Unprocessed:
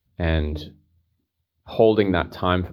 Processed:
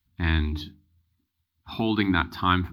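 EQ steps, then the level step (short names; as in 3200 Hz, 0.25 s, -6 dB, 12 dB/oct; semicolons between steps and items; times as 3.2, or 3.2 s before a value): Chebyshev band-stop 290–950 Hz, order 2; bell 140 Hz -6.5 dB 1.1 oct; +2.0 dB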